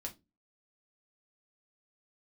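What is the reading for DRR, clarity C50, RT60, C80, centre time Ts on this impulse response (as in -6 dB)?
-0.5 dB, 16.5 dB, not exponential, 26.5 dB, 10 ms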